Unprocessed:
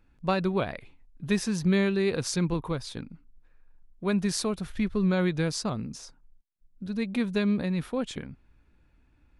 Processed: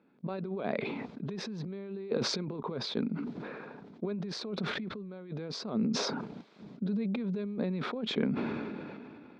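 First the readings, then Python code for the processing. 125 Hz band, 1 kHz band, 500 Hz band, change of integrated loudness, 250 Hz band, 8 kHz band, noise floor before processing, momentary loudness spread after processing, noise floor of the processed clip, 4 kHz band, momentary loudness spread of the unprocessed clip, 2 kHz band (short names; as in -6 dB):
-7.5 dB, -5.0 dB, -5.5 dB, -7.0 dB, -6.0 dB, -9.0 dB, -64 dBFS, 12 LU, -54 dBFS, -0.5 dB, 15 LU, -6.0 dB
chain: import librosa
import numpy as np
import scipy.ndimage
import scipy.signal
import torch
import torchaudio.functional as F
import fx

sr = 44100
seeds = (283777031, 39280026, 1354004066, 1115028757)

y = fx.over_compress(x, sr, threshold_db=-33.0, ratio=-0.5)
y = fx.cabinet(y, sr, low_hz=170.0, low_slope=24, high_hz=3800.0, hz=(220.0, 420.0, 600.0, 1800.0, 2900.0), db=(7, 9, 3, -6, -8))
y = fx.sustainer(y, sr, db_per_s=23.0)
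y = y * librosa.db_to_amplitude(-4.5)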